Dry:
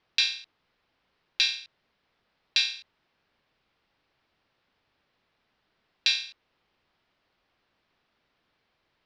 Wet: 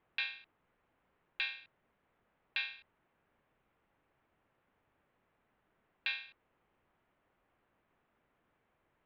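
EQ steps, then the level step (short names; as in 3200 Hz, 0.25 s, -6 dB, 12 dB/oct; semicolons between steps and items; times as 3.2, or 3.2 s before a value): Gaussian blur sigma 3.7 samples; 0.0 dB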